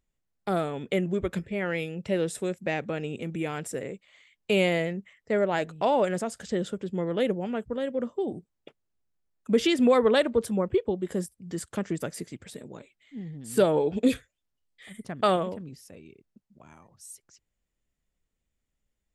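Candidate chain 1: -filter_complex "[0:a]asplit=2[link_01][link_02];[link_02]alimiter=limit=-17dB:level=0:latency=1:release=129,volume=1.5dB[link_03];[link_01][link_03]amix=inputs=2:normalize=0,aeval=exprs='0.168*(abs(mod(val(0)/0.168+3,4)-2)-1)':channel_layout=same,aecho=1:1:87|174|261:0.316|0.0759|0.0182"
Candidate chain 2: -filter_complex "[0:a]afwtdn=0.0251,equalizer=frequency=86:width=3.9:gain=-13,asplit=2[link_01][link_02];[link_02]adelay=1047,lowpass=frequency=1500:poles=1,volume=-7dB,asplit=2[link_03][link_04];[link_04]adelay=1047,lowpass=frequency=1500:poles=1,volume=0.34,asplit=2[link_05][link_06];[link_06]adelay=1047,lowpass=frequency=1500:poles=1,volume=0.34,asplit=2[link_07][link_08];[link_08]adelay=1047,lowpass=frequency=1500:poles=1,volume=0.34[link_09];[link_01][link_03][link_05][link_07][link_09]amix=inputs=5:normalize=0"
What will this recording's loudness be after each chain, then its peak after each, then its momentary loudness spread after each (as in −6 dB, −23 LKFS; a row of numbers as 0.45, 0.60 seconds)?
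−24.0, −28.0 LKFS; −13.0, −9.5 dBFS; 16, 15 LU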